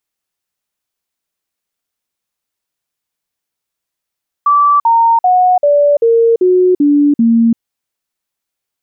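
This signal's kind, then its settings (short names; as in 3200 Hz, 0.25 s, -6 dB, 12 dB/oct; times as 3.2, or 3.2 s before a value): stepped sine 1160 Hz down, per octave 3, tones 8, 0.34 s, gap 0.05 s -6 dBFS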